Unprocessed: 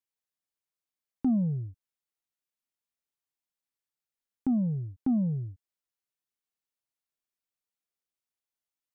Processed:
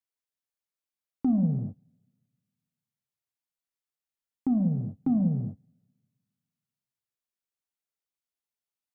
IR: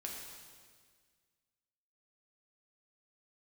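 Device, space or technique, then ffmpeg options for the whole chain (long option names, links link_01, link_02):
keyed gated reverb: -filter_complex "[0:a]asplit=3[link_01][link_02][link_03];[1:a]atrim=start_sample=2205[link_04];[link_02][link_04]afir=irnorm=-1:irlink=0[link_05];[link_03]apad=whole_len=394344[link_06];[link_05][link_06]sidechaingate=range=-26dB:threshold=-39dB:ratio=16:detection=peak,volume=2.5dB[link_07];[link_01][link_07]amix=inputs=2:normalize=0,volume=-3.5dB"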